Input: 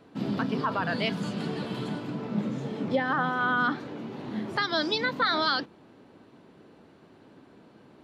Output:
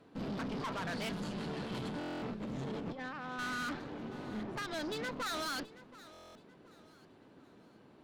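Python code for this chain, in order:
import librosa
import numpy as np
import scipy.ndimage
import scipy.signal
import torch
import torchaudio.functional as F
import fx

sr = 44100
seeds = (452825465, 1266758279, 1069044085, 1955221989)

y = fx.over_compress(x, sr, threshold_db=-34.0, ratio=-1.0, at=(1.72, 3.39))
y = fx.lowpass(y, sr, hz=1900.0, slope=6, at=(4.43, 5.26))
y = fx.tube_stage(y, sr, drive_db=34.0, bias=0.75)
y = fx.echo_feedback(y, sr, ms=726, feedback_pct=34, wet_db=-18)
y = fx.buffer_glitch(y, sr, at_s=(1.99, 6.12), block=1024, repeats=9)
y = y * librosa.db_to_amplitude(-1.5)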